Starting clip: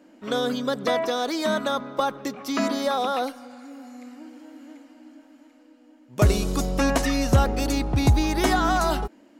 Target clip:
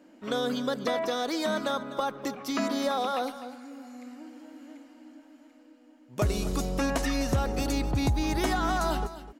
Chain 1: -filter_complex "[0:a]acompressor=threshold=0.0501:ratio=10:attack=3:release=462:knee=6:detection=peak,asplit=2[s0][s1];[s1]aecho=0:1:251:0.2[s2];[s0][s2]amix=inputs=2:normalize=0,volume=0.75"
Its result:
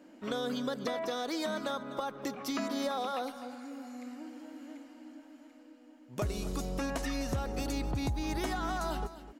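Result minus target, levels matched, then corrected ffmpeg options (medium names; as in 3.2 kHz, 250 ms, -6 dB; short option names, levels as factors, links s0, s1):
compression: peak gain reduction +7.5 dB
-filter_complex "[0:a]acompressor=threshold=0.133:ratio=10:attack=3:release=462:knee=6:detection=peak,asplit=2[s0][s1];[s1]aecho=0:1:251:0.2[s2];[s0][s2]amix=inputs=2:normalize=0,volume=0.75"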